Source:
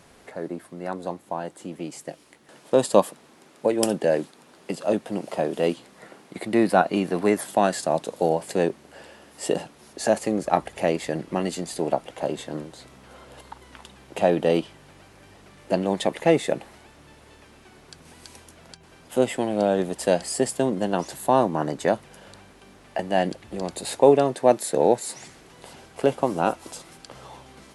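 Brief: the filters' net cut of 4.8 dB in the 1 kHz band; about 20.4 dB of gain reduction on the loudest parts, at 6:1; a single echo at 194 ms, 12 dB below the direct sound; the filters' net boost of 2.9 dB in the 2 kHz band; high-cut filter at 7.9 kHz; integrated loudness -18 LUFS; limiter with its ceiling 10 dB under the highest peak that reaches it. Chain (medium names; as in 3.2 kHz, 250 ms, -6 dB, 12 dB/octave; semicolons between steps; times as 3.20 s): low-pass 7.9 kHz; peaking EQ 1 kHz -8.5 dB; peaking EQ 2 kHz +6.5 dB; compression 6:1, threshold -35 dBFS; peak limiter -29 dBFS; delay 194 ms -12 dB; trim +25 dB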